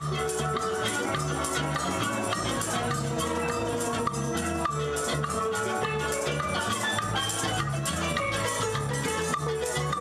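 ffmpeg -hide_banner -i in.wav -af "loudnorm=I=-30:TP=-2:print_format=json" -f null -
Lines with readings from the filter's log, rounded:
"input_i" : "-28.2",
"input_tp" : "-13.4",
"input_lra" : "0.7",
"input_thresh" : "-38.2",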